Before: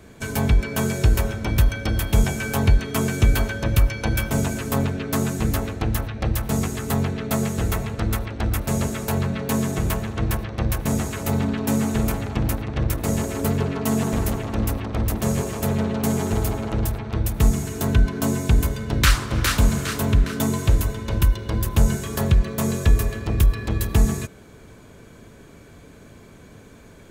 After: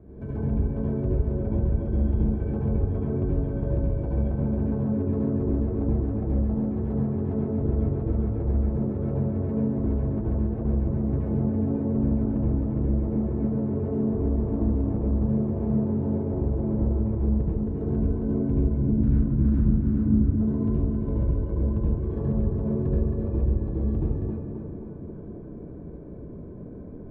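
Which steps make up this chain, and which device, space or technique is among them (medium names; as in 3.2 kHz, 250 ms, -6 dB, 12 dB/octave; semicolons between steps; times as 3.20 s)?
18.71–20.19 s: resonant low shelf 360 Hz +8 dB, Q 3; television next door (compression 4:1, threshold -28 dBFS, peak gain reduction 20 dB; low-pass 450 Hz 12 dB/octave; reverberation RT60 0.75 s, pre-delay 68 ms, DRR -5 dB); tape echo 268 ms, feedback 73%, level -4 dB, low-pass 2.2 kHz; trim -1.5 dB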